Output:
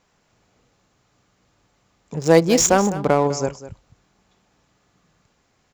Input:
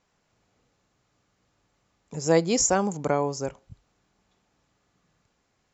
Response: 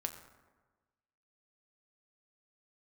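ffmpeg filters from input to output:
-filter_complex "[0:a]asettb=1/sr,asplit=3[a][b][c];[a]atrim=end=2.144[d];[b]atrim=start=2.14:end=3.27,asetpts=PTS-STARTPTS,afade=t=in:d=0.004:c=qsin,afade=t=out:st=1.126:d=0.004:c=qsin,adynamicsmooth=sensitivity=6.5:basefreq=1.2k[e];[c]atrim=start=3.266[f];[d][e]acrossfade=d=0.004:c1=hsin:c2=qsin[g];[g][f]acrossfade=d=0.004:c1=qsin:c2=hsin,aecho=1:1:203:0.188,volume=7dB"

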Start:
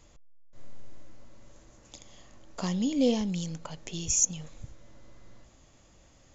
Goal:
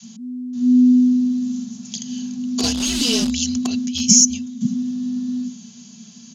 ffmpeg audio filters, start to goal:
-filter_complex "[0:a]asettb=1/sr,asplit=3[a][b][c];[a]atrim=end=3.864[d];[b]atrim=start=3.86:end=4.61,asetpts=PTS-STARTPTS,afade=t=in:d=0.004:c=qsin,afade=t=out:st=0.746:d=0.004:c=qsin,agate=range=-11dB:threshold=-35dB:ratio=16:detection=peak[e];[c]atrim=start=4.606[f];[d][e]acrossfade=d=0.004:c1=hsin:c2=qsin[g];[g][f]acrossfade=d=0.004:c1=qsin:c2=hsin,lowshelf=f=180:g=12,aecho=1:1:3.1:0.59,adynamicequalizer=threshold=0.00447:dfrequency=710:dqfactor=1.7:tfrequency=710:tqfactor=1.7:attack=5:release=100:ratio=0.375:range=2.5:mode=boostabove:tftype=bell,acrossover=split=290|650[h][i][j];[h]dynaudnorm=f=290:g=9:m=5dB[k];[i]acrusher=bits=5:mix=0:aa=0.000001[l];[j]alimiter=limit=-20dB:level=0:latency=1:release=165[m];[k][l][m]amix=inputs=3:normalize=0,aexciter=amount=3.5:drive=9.1:freq=3.2k,afreqshift=-250,highpass=140,lowpass=6.6k,volume=4dB"

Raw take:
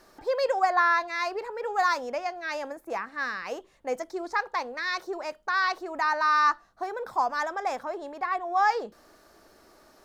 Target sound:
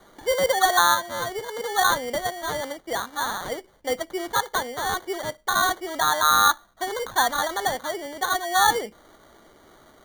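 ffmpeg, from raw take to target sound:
-filter_complex "[0:a]asettb=1/sr,asplit=3[a][b][c];[a]atrim=end=0.944[d];[b]atrim=start=0.94:end=1.72,asetpts=PTS-STARTPTS,afade=t=in:d=0.004:c=qsin,afade=t=out:st=0.776:d=0.004:c=qsin,acompressor=threshold=-34dB:ratio=1.5[e];[c]atrim=start=1.716[f];[d][e]acrossfade=d=0.004:c1=hsin:c2=qsin[g];[g][f]acrossfade=d=0.004:c1=qsin:c2=hsin,asettb=1/sr,asplit=3[h][i][j];[h]atrim=end=6.894[k];[i]atrim=start=6.89:end=7.68,asetpts=PTS-STARTPTS,afade=t=in:d=0.004:c=qsin,afade=t=out:st=0.786:d=0.004:c=qsin,lowshelf=f=170:g=10[l];[j]atrim=start=7.676[m];[k][l]acrossfade=d=0.004:c1=hsin:c2=qsin[n];[n][m]acrossfade=d=0.004:c1=qsin:c2=hsin,acrusher=samples=17:mix=1:aa=0.000001,volume=4dB"

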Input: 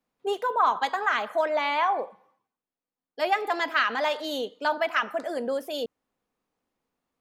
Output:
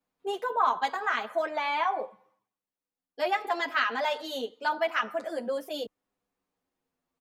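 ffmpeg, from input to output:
-filter_complex "[0:a]asplit=2[a][b];[b]adelay=8,afreqshift=-0.31[c];[a][c]amix=inputs=2:normalize=1"

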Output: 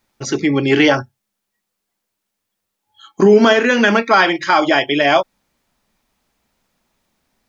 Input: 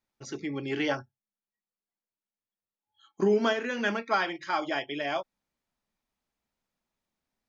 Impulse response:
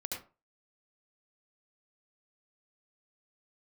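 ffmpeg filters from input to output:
-af "alimiter=level_in=19dB:limit=-1dB:release=50:level=0:latency=1,volume=-1dB"

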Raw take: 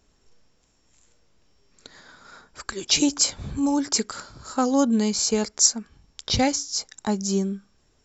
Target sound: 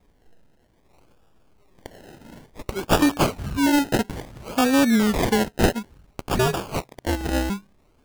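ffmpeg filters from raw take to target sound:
-filter_complex "[0:a]asettb=1/sr,asplit=3[a][b][c];[a]atrim=end=6.274[d];[b]atrim=start=6.27:end=7.5,asetpts=PTS-STARTPTS,afade=t=in:d=0.004:c=qsin,afade=t=out:st=1.226:d=0.004:c=qsin,aeval=exprs='val(0)*sin(2*PI*130*n/s)':c=same[e];[c]atrim=start=7.496[f];[d][e]acrossfade=d=0.004:c1=hsin:c2=qsin[g];[g][f]acrossfade=d=0.004:c1=qsin:c2=hsin,acrusher=samples=30:mix=1:aa=0.000001:lfo=1:lforange=18:lforate=0.58,aeval=exprs='0.473*(cos(1*acos(clip(val(0)/0.473,-1,1)))-cos(1*PI/2))+0.0531*(cos(5*acos(clip(val(0)/0.473,-1,1)))-cos(5*PI/2))':c=same"

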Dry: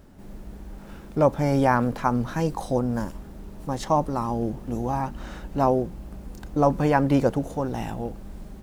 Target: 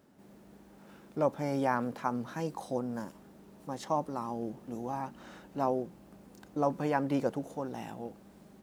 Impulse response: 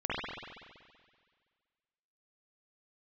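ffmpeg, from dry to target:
-af "highpass=170,volume=-9dB"

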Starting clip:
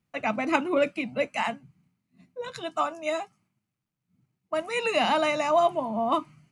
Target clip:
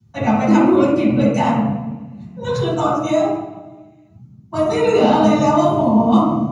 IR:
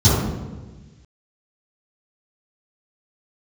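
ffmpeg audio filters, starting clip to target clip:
-filter_complex "[0:a]acrossover=split=360|2900[a][b][c];[a]acompressor=threshold=-39dB:ratio=4[d];[b]acompressor=threshold=-30dB:ratio=4[e];[c]acompressor=threshold=-44dB:ratio=4[f];[d][e][f]amix=inputs=3:normalize=0[g];[1:a]atrim=start_sample=2205[h];[g][h]afir=irnorm=-1:irlink=0,volume=-9dB"

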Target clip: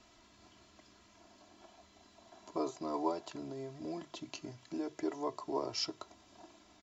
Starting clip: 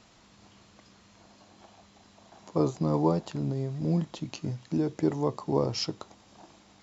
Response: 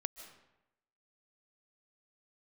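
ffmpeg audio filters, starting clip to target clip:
-filter_complex "[0:a]bandreject=f=50:t=h:w=6,bandreject=f=100:t=h:w=6,bandreject=f=150:t=h:w=6,aecho=1:1:3:0.69,acrossover=split=400[a][b];[a]acompressor=threshold=-42dB:ratio=6[c];[c][b]amix=inputs=2:normalize=0,volume=-6dB"

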